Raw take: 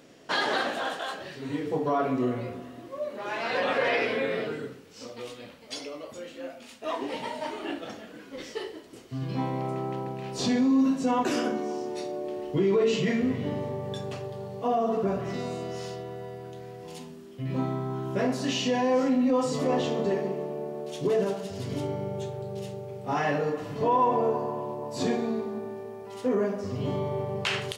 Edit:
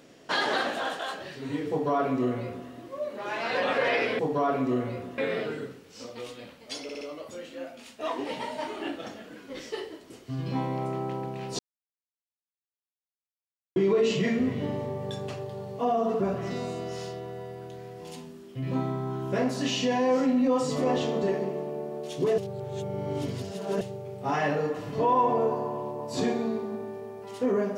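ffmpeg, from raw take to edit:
-filter_complex "[0:a]asplit=10[a][b][c][d][e][f][g][h][i][j];[a]atrim=end=4.192[k];[b]atrim=start=1.698:end=2.692[l];[c]atrim=start=4.188:end=5.902[m];[d]atrim=start=5.838:end=5.902[n];[e]atrim=start=5.838:end=5.902[o];[f]atrim=start=5.838:end=10.42,asetpts=PTS-STARTPTS,afade=t=out:st=4.578:d=0.004:c=hsin[p];[g]atrim=start=10.42:end=12.59,asetpts=PTS-STARTPTS,volume=0[q];[h]atrim=start=12.59:end=21.212,asetpts=PTS-STARTPTS,afade=t=in:d=0.004:c=hsin[r];[i]atrim=start=21.208:end=22.642,asetpts=PTS-STARTPTS,areverse[s];[j]atrim=start=22.638[t];[k][l]acrossfade=d=0.004:c1=hsin:c2=hsin[u];[u][m]acrossfade=d=0.004:c1=hsin:c2=hsin[v];[v][n]acrossfade=d=0.004:c1=hsin:c2=hsin[w];[w][o]acrossfade=d=0.004:c1=hsin:c2=hsin[x];[p][q][r]concat=n=3:v=0:a=1[y];[x][y]acrossfade=d=0.004:c1=hsin:c2=hsin[z];[z][s]acrossfade=d=0.004:c1=hsin:c2=hsin[aa];[aa][t]acrossfade=d=0.004:c1=hsin:c2=hsin"

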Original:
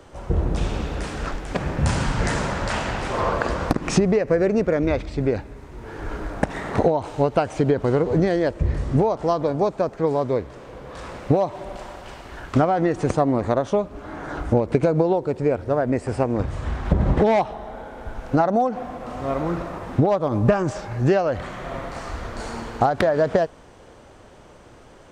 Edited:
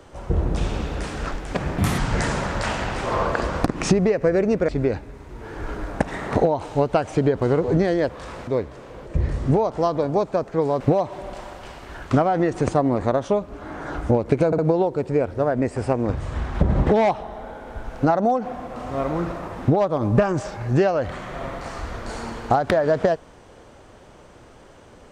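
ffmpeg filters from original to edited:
-filter_complex "[0:a]asplit=10[a][b][c][d][e][f][g][h][i][j];[a]atrim=end=1.784[k];[b]atrim=start=1.78:end=2.05,asetpts=PTS-STARTPTS,asetrate=58212,aresample=44100,atrim=end_sample=9020,asetpts=PTS-STARTPTS[l];[c]atrim=start=2.046:end=4.752[m];[d]atrim=start=5.108:end=8.522[n];[e]atrim=start=10.848:end=11.232[o];[f]atrim=start=10.258:end=10.852[p];[g]atrim=start=8.518:end=10.262[q];[h]atrim=start=11.228:end=14.952[r];[i]atrim=start=14.888:end=14.952[s];[j]atrim=start=14.888[t];[k][l]acrossfade=d=0.004:c1=hsin:c2=hsin[u];[u][m]acrossfade=d=0.004:c1=hsin:c2=hsin[v];[v][n]acrossfade=d=0.004:c1=hsin:c2=hsin[w];[w][o]acrossfade=d=0.004:c1=hsin:c2=hsin[x];[x][p]acrossfade=d=0.004:c1=hsin:c2=hsin[y];[y][q]acrossfade=d=0.004:c1=hsin:c2=hsin[z];[z][r]acrossfade=d=0.004:c1=hsin:c2=hsin[aa];[aa][s]acrossfade=d=0.004:c1=hsin:c2=hsin[ab];[ab][t]acrossfade=d=0.004:c1=hsin:c2=hsin"

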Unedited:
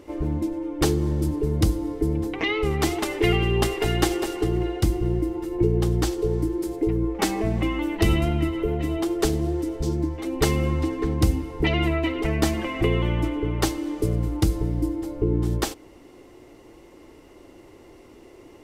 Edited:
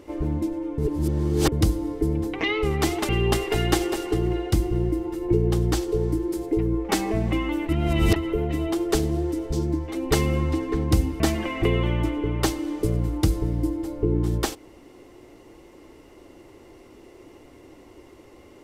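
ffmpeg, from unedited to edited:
-filter_complex "[0:a]asplit=7[a][b][c][d][e][f][g];[a]atrim=end=0.782[h];[b]atrim=start=0.778:end=1.522,asetpts=PTS-STARTPTS,areverse[i];[c]atrim=start=1.518:end=3.092[j];[d]atrim=start=3.388:end=7.992[k];[e]atrim=start=7.988:end=8.462,asetpts=PTS-STARTPTS,areverse[l];[f]atrim=start=8.458:end=11.502[m];[g]atrim=start=12.388[n];[h][i]acrossfade=d=0.004:c1=hsin:c2=hsin[o];[o][j]acrossfade=d=0.004:c1=hsin:c2=hsin[p];[p][k]acrossfade=d=0.004:c1=hsin:c2=hsin[q];[q][l]acrossfade=d=0.004:c1=hsin:c2=hsin[r];[r][m]acrossfade=d=0.004:c1=hsin:c2=hsin[s];[s][n]acrossfade=d=0.004:c1=hsin:c2=hsin"

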